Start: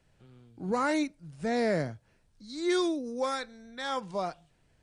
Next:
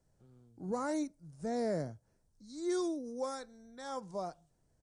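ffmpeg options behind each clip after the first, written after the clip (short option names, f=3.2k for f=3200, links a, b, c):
-af "firequalizer=gain_entry='entry(630,0);entry(2600,-15);entry(5800,2)':delay=0.05:min_phase=1,volume=-6dB"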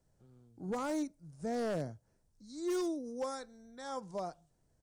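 -af "aeval=exprs='0.0355*(abs(mod(val(0)/0.0355+3,4)-2)-1)':c=same"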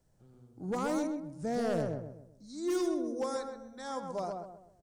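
-filter_complex "[0:a]asplit=2[a][b];[b]adelay=129,lowpass=f=1.2k:p=1,volume=-3dB,asplit=2[c][d];[d]adelay=129,lowpass=f=1.2k:p=1,volume=0.41,asplit=2[e][f];[f]adelay=129,lowpass=f=1.2k:p=1,volume=0.41,asplit=2[g][h];[h]adelay=129,lowpass=f=1.2k:p=1,volume=0.41,asplit=2[i][j];[j]adelay=129,lowpass=f=1.2k:p=1,volume=0.41[k];[a][c][e][g][i][k]amix=inputs=6:normalize=0,volume=2.5dB"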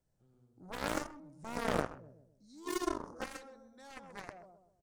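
-af "aeval=exprs='0.0841*(cos(1*acos(clip(val(0)/0.0841,-1,1)))-cos(1*PI/2))+0.0335*(cos(3*acos(clip(val(0)/0.0841,-1,1)))-cos(3*PI/2))':c=same,volume=4.5dB"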